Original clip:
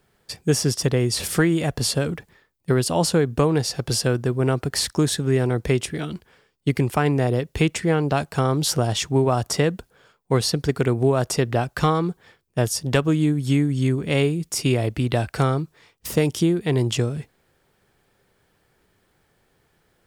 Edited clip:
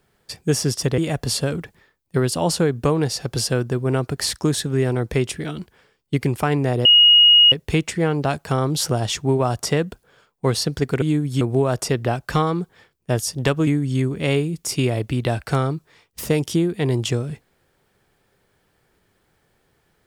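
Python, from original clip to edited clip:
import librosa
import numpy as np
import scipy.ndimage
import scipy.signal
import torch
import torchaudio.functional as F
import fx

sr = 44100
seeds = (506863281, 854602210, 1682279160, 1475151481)

y = fx.edit(x, sr, fx.cut(start_s=0.98, length_s=0.54),
    fx.insert_tone(at_s=7.39, length_s=0.67, hz=2880.0, db=-8.0),
    fx.move(start_s=13.15, length_s=0.39, to_s=10.89), tone=tone)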